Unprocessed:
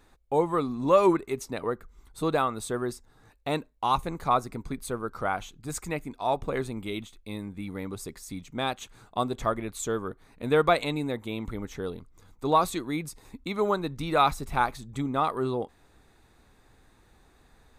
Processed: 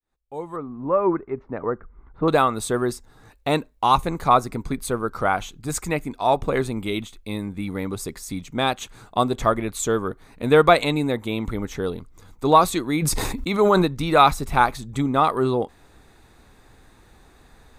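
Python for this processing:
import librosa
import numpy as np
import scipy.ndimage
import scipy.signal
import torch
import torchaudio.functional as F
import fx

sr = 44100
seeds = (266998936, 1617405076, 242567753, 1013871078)

y = fx.fade_in_head(x, sr, length_s=2.37)
y = fx.lowpass(y, sr, hz=1700.0, slope=24, at=(0.56, 2.28))
y = fx.sustainer(y, sr, db_per_s=22.0, at=(13.01, 13.85), fade=0.02)
y = y * 10.0 ** (7.5 / 20.0)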